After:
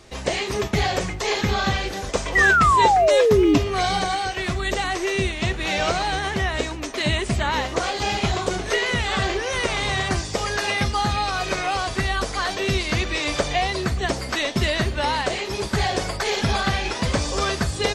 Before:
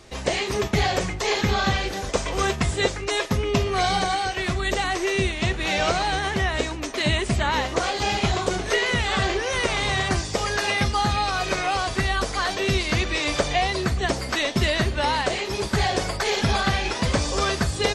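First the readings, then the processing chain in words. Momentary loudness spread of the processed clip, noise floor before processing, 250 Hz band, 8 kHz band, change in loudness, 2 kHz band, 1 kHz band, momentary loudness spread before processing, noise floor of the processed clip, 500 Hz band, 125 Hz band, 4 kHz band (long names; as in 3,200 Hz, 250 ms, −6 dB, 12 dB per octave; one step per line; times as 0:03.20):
9 LU, −31 dBFS, +1.5 dB, 0.0 dB, +1.5 dB, +2.0 dB, +2.5 dB, 3 LU, −31 dBFS, +2.5 dB, 0.0 dB, 0.0 dB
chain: sound drawn into the spectrogram fall, 0:02.35–0:03.58, 280–2,000 Hz −16 dBFS
floating-point word with a short mantissa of 6 bits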